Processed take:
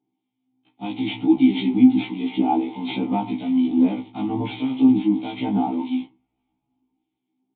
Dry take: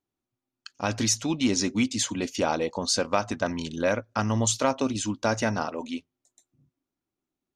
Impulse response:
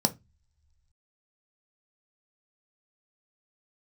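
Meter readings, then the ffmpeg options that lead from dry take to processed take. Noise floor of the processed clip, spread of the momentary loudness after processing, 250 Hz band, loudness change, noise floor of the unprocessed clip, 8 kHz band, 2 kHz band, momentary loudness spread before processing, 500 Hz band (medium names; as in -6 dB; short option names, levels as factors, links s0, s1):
-80 dBFS, 11 LU, +10.5 dB, +5.5 dB, under -85 dBFS, under -40 dB, -5.0 dB, 7 LU, -3.5 dB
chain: -filter_complex "[0:a]aeval=exprs='val(0)+0.5*0.0266*sgn(val(0))':c=same,agate=range=0.00708:threshold=0.0224:ratio=16:detection=peak,acrossover=split=1900[s0][s1];[s0]aeval=exprs='val(0)*(1-0.7/2+0.7/2*cos(2*PI*1.6*n/s))':c=same[s2];[s1]aeval=exprs='val(0)*(1-0.7/2-0.7/2*cos(2*PI*1.6*n/s))':c=same[s3];[s2][s3]amix=inputs=2:normalize=0,acrossover=split=450[s4][s5];[s5]asoftclip=type=tanh:threshold=0.0944[s6];[s4][s6]amix=inputs=2:normalize=0,acrusher=samples=5:mix=1:aa=0.000001,asplit=3[s7][s8][s9];[s7]bandpass=f=300:t=q:w=8,volume=1[s10];[s8]bandpass=f=870:t=q:w=8,volume=0.501[s11];[s9]bandpass=f=2240:t=q:w=8,volume=0.355[s12];[s10][s11][s12]amix=inputs=3:normalize=0[s13];[1:a]atrim=start_sample=2205,asetrate=33516,aresample=44100[s14];[s13][s14]afir=irnorm=-1:irlink=0,asplit=2[s15][s16];[s16]alimiter=limit=0.168:level=0:latency=1:release=174,volume=0.708[s17];[s15][s17]amix=inputs=2:normalize=0,highshelf=f=2700:g=7.5,aresample=8000,aresample=44100,afftfilt=real='re*1.73*eq(mod(b,3),0)':imag='im*1.73*eq(mod(b,3),0)':win_size=2048:overlap=0.75,volume=1.26"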